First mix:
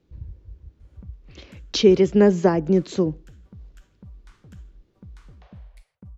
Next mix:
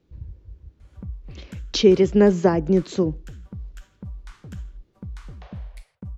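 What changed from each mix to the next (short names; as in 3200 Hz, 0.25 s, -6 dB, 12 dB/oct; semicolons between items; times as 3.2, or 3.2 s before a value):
background +8.0 dB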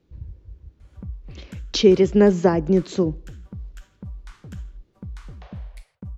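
reverb: on, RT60 0.85 s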